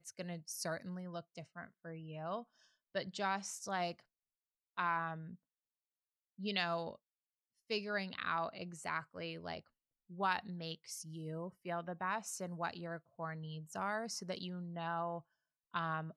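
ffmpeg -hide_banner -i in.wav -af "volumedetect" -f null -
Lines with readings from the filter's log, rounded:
mean_volume: -42.6 dB
max_volume: -19.5 dB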